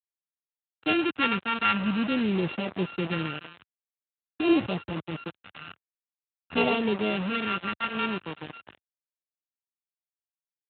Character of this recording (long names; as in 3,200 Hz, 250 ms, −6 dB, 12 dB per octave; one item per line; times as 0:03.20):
a buzz of ramps at a fixed pitch in blocks of 32 samples
phaser sweep stages 2, 0.48 Hz, lowest notch 520–1,400 Hz
a quantiser's noise floor 6 bits, dither none
Speex